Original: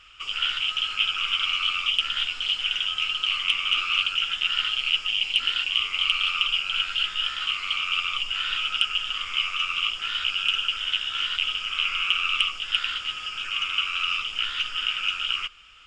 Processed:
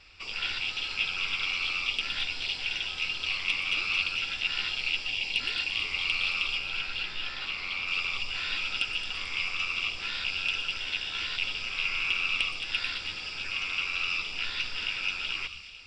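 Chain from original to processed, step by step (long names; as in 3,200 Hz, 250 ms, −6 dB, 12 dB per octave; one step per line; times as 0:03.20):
0:06.58–0:07.88: high-shelf EQ 5,000 Hz −9 dB
delay with a high-pass on its return 221 ms, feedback 55%, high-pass 3,500 Hz, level −7 dB
convolution reverb RT60 0.35 s, pre-delay 117 ms, DRR 20.5 dB
level −4.5 dB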